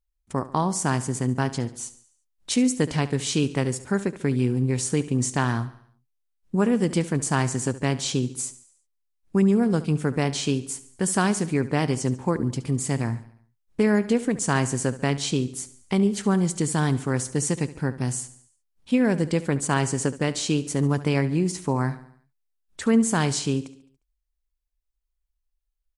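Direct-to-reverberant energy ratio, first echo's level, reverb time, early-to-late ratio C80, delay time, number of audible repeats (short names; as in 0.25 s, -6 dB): none, -16.0 dB, none, none, 71 ms, 4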